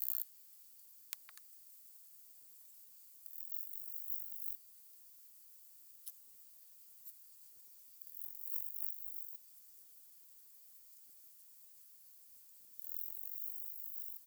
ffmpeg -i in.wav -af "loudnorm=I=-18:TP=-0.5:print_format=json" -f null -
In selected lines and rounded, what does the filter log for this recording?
"input_i" : "-42.9",
"input_tp" : "-12.7",
"input_lra" : "7.0",
"input_thresh" : "-55.7",